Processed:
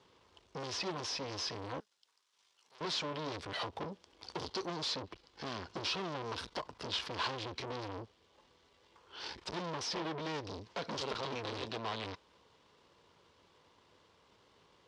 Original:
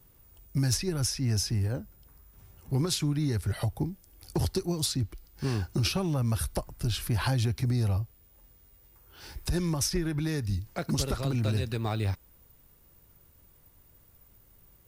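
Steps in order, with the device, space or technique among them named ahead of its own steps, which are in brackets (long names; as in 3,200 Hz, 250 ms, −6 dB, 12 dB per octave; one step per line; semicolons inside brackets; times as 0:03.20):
guitar amplifier (tube saturation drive 41 dB, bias 0.75; bass and treble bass −9 dB, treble +9 dB; loudspeaker in its box 110–4,500 Hz, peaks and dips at 130 Hz −4 dB, 450 Hz +5 dB, 1,000 Hz +8 dB, 3,200 Hz +4 dB)
0:01.80–0:02.81: first difference
level +6 dB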